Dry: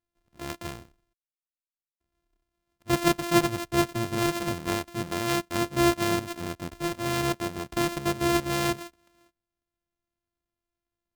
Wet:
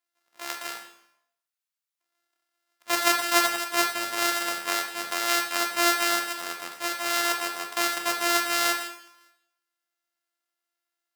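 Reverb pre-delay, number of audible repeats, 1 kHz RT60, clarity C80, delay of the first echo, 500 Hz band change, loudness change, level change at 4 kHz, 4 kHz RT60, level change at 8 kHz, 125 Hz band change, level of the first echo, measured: 7 ms, no echo, 0.75 s, 10.0 dB, no echo, -4.0 dB, +2.5 dB, +6.5 dB, 0.70 s, +7.5 dB, under -25 dB, no echo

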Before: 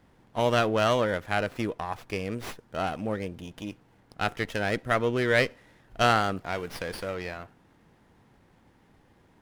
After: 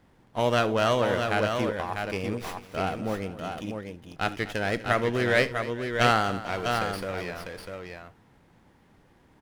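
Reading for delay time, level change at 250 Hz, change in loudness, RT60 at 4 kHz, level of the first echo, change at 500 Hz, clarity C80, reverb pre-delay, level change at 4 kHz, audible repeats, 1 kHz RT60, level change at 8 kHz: 41 ms, +1.5 dB, +1.0 dB, no reverb, -19.0 dB, +1.0 dB, no reverb, no reverb, +1.5 dB, 5, no reverb, +1.5 dB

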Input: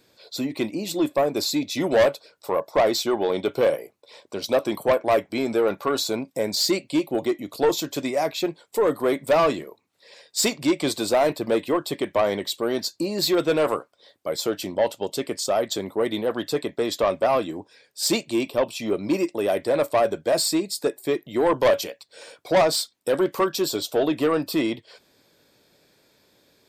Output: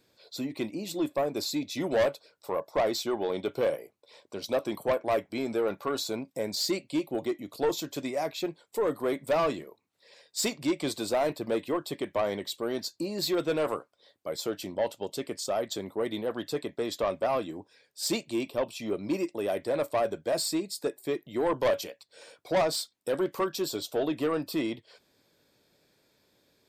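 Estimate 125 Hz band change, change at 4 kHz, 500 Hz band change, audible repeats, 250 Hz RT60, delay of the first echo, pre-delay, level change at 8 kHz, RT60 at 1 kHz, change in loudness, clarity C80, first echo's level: -6.0 dB, -7.5 dB, -7.0 dB, no echo, no reverb, no echo, no reverb, -7.5 dB, no reverb, -7.0 dB, no reverb, no echo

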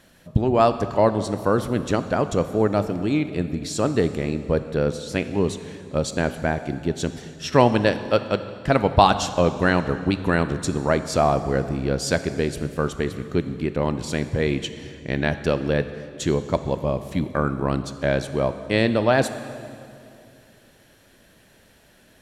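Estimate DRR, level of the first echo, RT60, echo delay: 11.0 dB, no echo, 2.4 s, no echo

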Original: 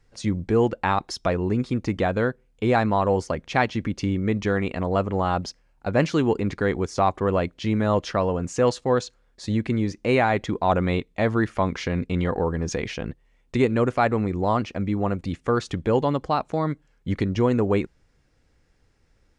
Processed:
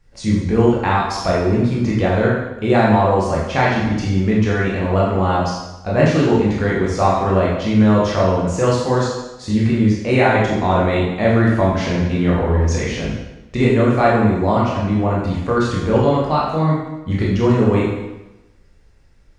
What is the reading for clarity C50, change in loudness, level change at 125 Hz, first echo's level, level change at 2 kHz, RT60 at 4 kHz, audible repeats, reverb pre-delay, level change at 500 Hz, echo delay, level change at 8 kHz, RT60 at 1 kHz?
1.5 dB, +7.0 dB, +9.0 dB, no echo, +6.5 dB, 0.95 s, no echo, 11 ms, +6.0 dB, no echo, +6.0 dB, 1.0 s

